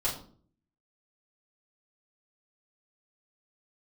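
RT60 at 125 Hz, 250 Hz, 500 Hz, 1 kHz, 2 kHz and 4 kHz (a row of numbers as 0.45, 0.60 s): 0.75, 0.70, 0.55, 0.45, 0.35, 0.35 s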